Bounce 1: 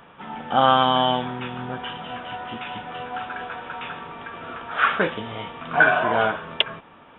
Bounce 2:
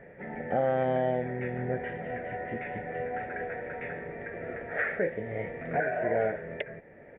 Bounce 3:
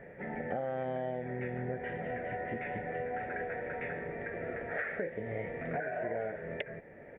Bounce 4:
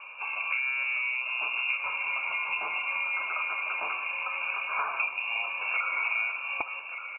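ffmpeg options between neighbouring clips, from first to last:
-af "firequalizer=gain_entry='entry(150,0);entry(270,-5);entry(390,3);entry(560,5);entry(1100,-27);entry(1900,6);entry(3000,-28)':delay=0.05:min_phase=1,alimiter=limit=-19dB:level=0:latency=1:release=445,volume=1dB"
-af "acompressor=threshold=-33dB:ratio=5"
-af "asuperstop=centerf=890:order=12:qfactor=3,aecho=1:1:1178:0.316,lowpass=f=2.5k:t=q:w=0.5098,lowpass=f=2.5k:t=q:w=0.6013,lowpass=f=2.5k:t=q:w=0.9,lowpass=f=2.5k:t=q:w=2.563,afreqshift=-2900,volume=6dB"

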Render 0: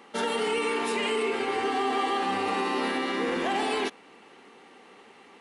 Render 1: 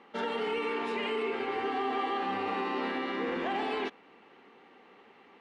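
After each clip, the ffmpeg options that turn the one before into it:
-af "lowpass=3.2k,volume=-4.5dB"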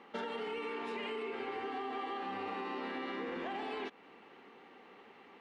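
-af "acompressor=threshold=-37dB:ratio=6"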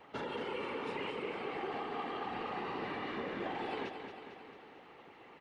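-af "afftfilt=real='hypot(re,im)*cos(2*PI*random(0))':imag='hypot(re,im)*sin(2*PI*random(1))':win_size=512:overlap=0.75,aecho=1:1:225|450|675|900|1125|1350|1575:0.398|0.235|0.139|0.0818|0.0482|0.0285|0.0168,volume=5.5dB"

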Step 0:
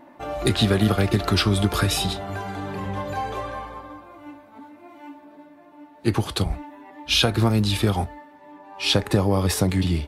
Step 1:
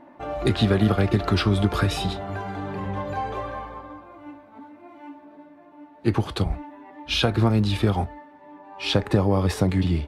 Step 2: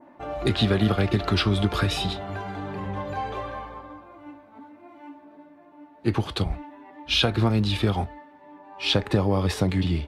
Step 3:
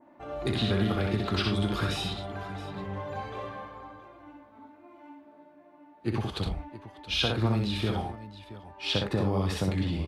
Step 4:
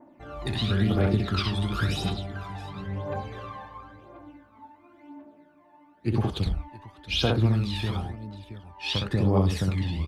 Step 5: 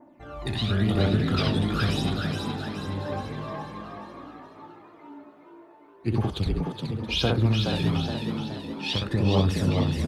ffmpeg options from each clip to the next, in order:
-af "lowpass=f=2.4k:p=1"
-af "adynamicequalizer=threshold=0.00891:dfrequency=3400:dqfactor=0.95:tfrequency=3400:tqfactor=0.95:attack=5:release=100:ratio=0.375:range=2.5:mode=boostabove:tftype=bell,volume=-2dB"
-af "aecho=1:1:63|88|103|673:0.668|0.266|0.211|0.168,volume=-7dB"
-af "aphaser=in_gain=1:out_gain=1:delay=1.2:decay=0.61:speed=0.96:type=triangular,volume=-1.5dB"
-filter_complex "[0:a]asplit=7[a][b][c][d][e][f][g];[b]adelay=421,afreqshift=55,volume=-5dB[h];[c]adelay=842,afreqshift=110,volume=-11.2dB[i];[d]adelay=1263,afreqshift=165,volume=-17.4dB[j];[e]adelay=1684,afreqshift=220,volume=-23.6dB[k];[f]adelay=2105,afreqshift=275,volume=-29.8dB[l];[g]adelay=2526,afreqshift=330,volume=-36dB[m];[a][h][i][j][k][l][m]amix=inputs=7:normalize=0"

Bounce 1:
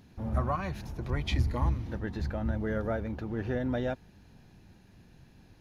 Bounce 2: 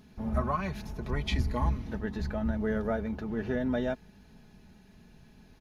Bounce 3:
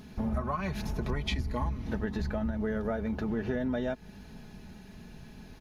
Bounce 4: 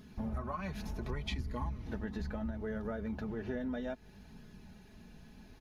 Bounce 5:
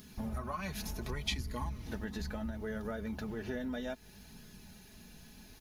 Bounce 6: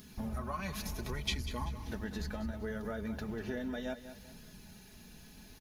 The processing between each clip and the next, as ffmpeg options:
-af "aecho=1:1:4.7:0.55"
-af "acompressor=threshold=-36dB:ratio=6,volume=7.5dB"
-af "flanger=delay=0.6:depth=3.5:regen=-60:speed=0.67:shape=sinusoidal,volume=-2.5dB"
-af "crystalizer=i=4:c=0,volume=-1dB"
-af "aecho=1:1:193|386|579|772:0.251|0.0904|0.0326|0.0117"

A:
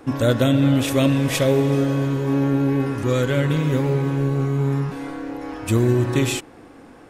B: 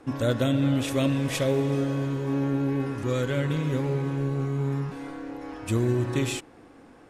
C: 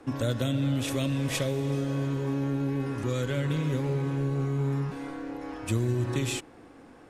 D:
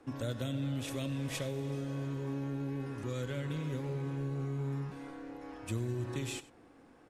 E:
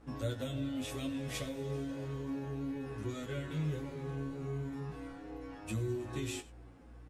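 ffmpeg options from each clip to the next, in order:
-af "lowpass=12k,volume=-6.5dB"
-filter_complex "[0:a]acrossover=split=150|3000[a][b][c];[b]acompressor=threshold=-28dB:ratio=6[d];[a][d][c]amix=inputs=3:normalize=0"
-af "aecho=1:1:95:0.119,volume=-8.5dB"
-filter_complex "[0:a]aeval=exprs='val(0)+0.00224*(sin(2*PI*60*n/s)+sin(2*PI*2*60*n/s)/2+sin(2*PI*3*60*n/s)/3+sin(2*PI*4*60*n/s)/4+sin(2*PI*5*60*n/s)/5)':c=same,asplit=2[a][b];[b]adelay=19,volume=-6.5dB[c];[a][c]amix=inputs=2:normalize=0,asplit=2[d][e];[e]adelay=9,afreqshift=-2.5[f];[d][f]amix=inputs=2:normalize=1,volume=1dB"

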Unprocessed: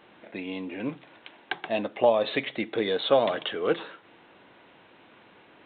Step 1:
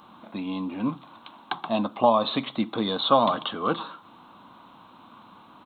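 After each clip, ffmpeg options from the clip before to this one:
-af "firequalizer=gain_entry='entry(140,0);entry(230,5);entry(400,-11);entry(1100,9);entry(1800,-15);entry(5000,11)':delay=0.05:min_phase=1,volume=4.5dB"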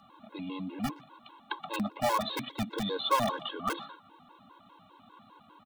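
-filter_complex "[0:a]acrossover=split=200|610|900[a][b][c][d];[b]aeval=exprs='(mod(14.1*val(0)+1,2)-1)/14.1':c=same[e];[a][e][c][d]amix=inputs=4:normalize=0,asplit=2[f][g];[g]adelay=120,highpass=300,lowpass=3.4k,asoftclip=type=hard:threshold=-17.5dB,volume=-20dB[h];[f][h]amix=inputs=2:normalize=0,afftfilt=real='re*gt(sin(2*PI*5*pts/sr)*(1-2*mod(floor(b*sr/1024/280),2)),0)':imag='im*gt(sin(2*PI*5*pts/sr)*(1-2*mod(floor(b*sr/1024/280),2)),0)':win_size=1024:overlap=0.75,volume=-3dB"

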